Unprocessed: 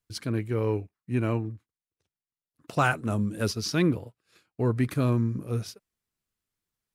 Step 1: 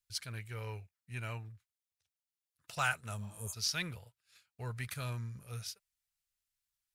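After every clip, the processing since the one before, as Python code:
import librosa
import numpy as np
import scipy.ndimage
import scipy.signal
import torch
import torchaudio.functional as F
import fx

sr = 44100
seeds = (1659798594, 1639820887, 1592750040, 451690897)

y = fx.notch(x, sr, hz=1100.0, q=11.0)
y = fx.spec_repair(y, sr, seeds[0], start_s=3.23, length_s=0.28, low_hz=550.0, high_hz=6300.0, source='before')
y = fx.tone_stack(y, sr, knobs='10-0-10')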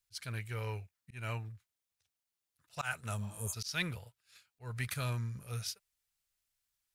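y = fx.auto_swell(x, sr, attack_ms=188.0)
y = F.gain(torch.from_numpy(y), 3.5).numpy()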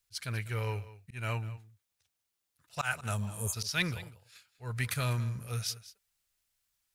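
y = x + 10.0 ** (-17.0 / 20.0) * np.pad(x, (int(195 * sr / 1000.0), 0))[:len(x)]
y = F.gain(torch.from_numpy(y), 4.5).numpy()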